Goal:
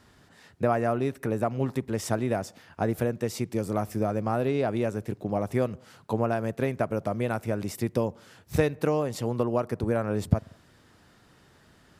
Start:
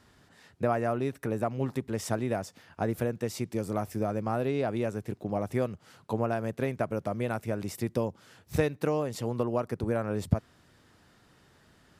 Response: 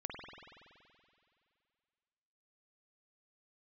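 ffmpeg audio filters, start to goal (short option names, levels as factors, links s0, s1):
-filter_complex "[0:a]asplit=2[s0][s1];[1:a]atrim=start_sample=2205,afade=t=out:st=0.24:d=0.01,atrim=end_sample=11025,lowpass=2000[s2];[s1][s2]afir=irnorm=-1:irlink=0,volume=0.0891[s3];[s0][s3]amix=inputs=2:normalize=0,volume=1.33"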